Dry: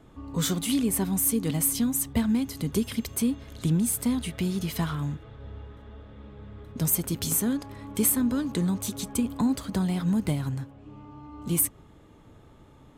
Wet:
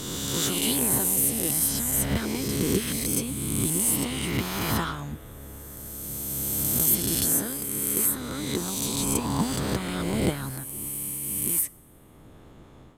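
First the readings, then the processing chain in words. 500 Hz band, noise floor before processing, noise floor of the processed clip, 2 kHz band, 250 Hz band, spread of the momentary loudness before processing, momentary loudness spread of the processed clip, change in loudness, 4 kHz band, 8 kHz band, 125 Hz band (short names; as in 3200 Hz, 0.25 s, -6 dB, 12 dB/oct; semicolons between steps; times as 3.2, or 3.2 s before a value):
+3.0 dB, -53 dBFS, -50 dBFS, +6.0 dB, -3.5 dB, 19 LU, 11 LU, +2.0 dB, +6.0 dB, +5.0 dB, -1.5 dB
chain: spectral swells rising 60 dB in 2.71 s; AGC gain up to 6 dB; harmonic-percussive split harmonic -15 dB; two-slope reverb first 0.33 s, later 2 s, from -17 dB, DRR 18 dB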